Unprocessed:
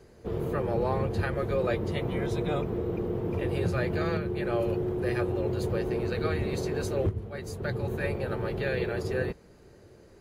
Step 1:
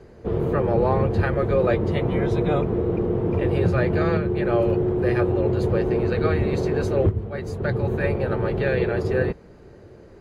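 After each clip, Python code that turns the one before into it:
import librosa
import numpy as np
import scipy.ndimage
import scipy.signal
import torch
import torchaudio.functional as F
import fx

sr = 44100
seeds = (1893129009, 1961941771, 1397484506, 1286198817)

y = fx.lowpass(x, sr, hz=2000.0, slope=6)
y = F.gain(torch.from_numpy(y), 8.0).numpy()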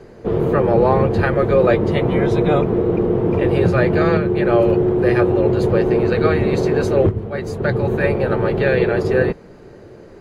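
y = fx.peak_eq(x, sr, hz=66.0, db=-9.5, octaves=1.1)
y = F.gain(torch.from_numpy(y), 6.5).numpy()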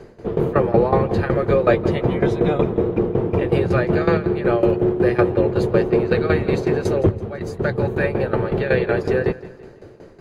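y = fx.tremolo_shape(x, sr, shape='saw_down', hz=5.4, depth_pct=85)
y = fx.echo_feedback(y, sr, ms=166, feedback_pct=44, wet_db=-17.5)
y = F.gain(torch.from_numpy(y), 1.5).numpy()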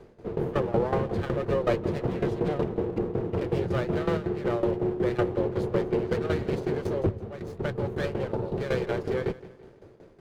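y = fx.spec_erase(x, sr, start_s=8.32, length_s=0.25, low_hz=1000.0, high_hz=3000.0)
y = fx.running_max(y, sr, window=9)
y = F.gain(torch.from_numpy(y), -9.0).numpy()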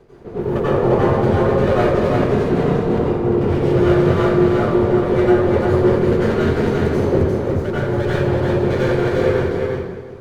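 y = fx.echo_feedback(x, sr, ms=347, feedback_pct=15, wet_db=-3.0)
y = fx.rev_plate(y, sr, seeds[0], rt60_s=1.1, hf_ratio=0.65, predelay_ms=75, drr_db=-9.5)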